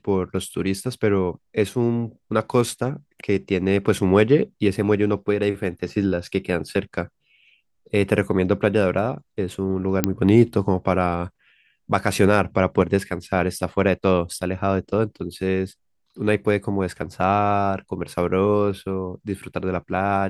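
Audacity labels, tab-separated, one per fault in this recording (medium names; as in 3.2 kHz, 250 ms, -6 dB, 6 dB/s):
10.040000	10.040000	pop -3 dBFS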